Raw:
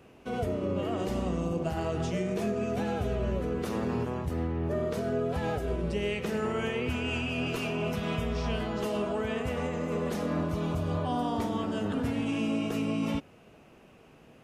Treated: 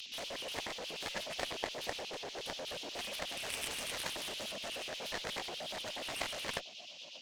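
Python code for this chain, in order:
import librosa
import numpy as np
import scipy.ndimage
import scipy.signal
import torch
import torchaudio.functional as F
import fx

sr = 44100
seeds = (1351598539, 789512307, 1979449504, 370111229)

y = fx.delta_mod(x, sr, bps=32000, step_db=-46.0)
y = fx.rider(y, sr, range_db=4, speed_s=2.0)
y = scipy.signal.sosfilt(scipy.signal.ellip(3, 1.0, 70, [210.0, 2900.0], 'bandstop', fs=sr, output='sos'), y)
y = 10.0 ** (-36.0 / 20.0) * (np.abs((y / 10.0 ** (-36.0 / 20.0) + 3.0) % 4.0 - 2.0) - 1.0)
y = fx.stretch_vocoder_free(y, sr, factor=0.5)
y = fx.filter_lfo_highpass(y, sr, shape='square', hz=8.3, low_hz=660.0, high_hz=3000.0, q=1.9)
y = fx.echo_feedback(y, sr, ms=588, feedback_pct=53, wet_db=-23.0)
y = fx.cheby_harmonics(y, sr, harmonics=(4, 7), levels_db=(-23, -11), full_scale_db=-30.5)
y = y * librosa.db_to_amplitude(12.5)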